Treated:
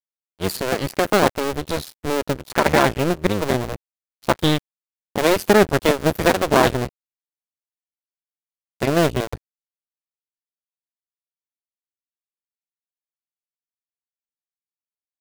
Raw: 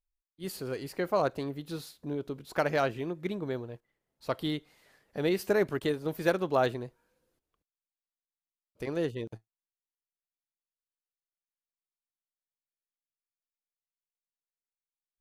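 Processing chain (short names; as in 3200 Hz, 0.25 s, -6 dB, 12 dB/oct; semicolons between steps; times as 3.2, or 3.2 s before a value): cycle switcher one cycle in 2, muted; low shelf 120 Hz +4 dB; in parallel at -1.5 dB: compressor, threshold -36 dBFS, peak gain reduction 14 dB; on the sum: crossover distortion -45.5 dBFS; maximiser +14.5 dB; gain -1 dB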